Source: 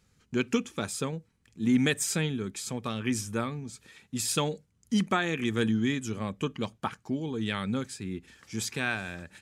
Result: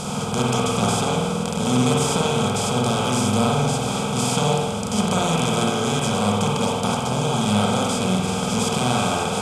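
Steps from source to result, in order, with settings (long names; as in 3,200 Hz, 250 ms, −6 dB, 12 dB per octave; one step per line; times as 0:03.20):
compressor on every frequency bin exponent 0.2
low-pass filter 10,000 Hz 12 dB per octave
parametric band 230 Hz +3.5 dB 2 octaves
phaser with its sweep stopped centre 740 Hz, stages 4
spring reverb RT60 1.2 s, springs 48 ms, chirp 65 ms, DRR −3 dB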